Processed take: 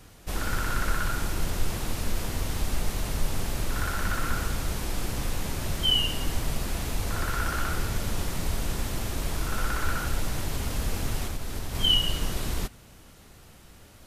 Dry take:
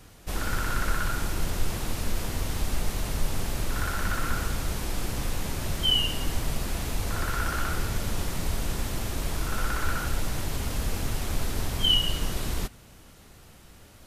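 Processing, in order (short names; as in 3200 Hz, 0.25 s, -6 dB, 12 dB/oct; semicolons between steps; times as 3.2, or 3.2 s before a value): 11.25–11.75 compressor 4:1, threshold -28 dBFS, peak gain reduction 7.5 dB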